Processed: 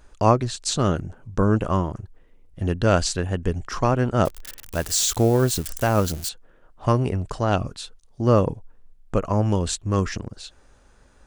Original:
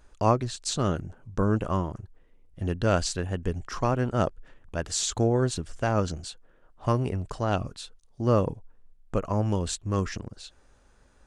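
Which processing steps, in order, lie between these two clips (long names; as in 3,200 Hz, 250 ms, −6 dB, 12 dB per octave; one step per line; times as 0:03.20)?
0:04.25–0:06.29: spike at every zero crossing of −28 dBFS
level +5 dB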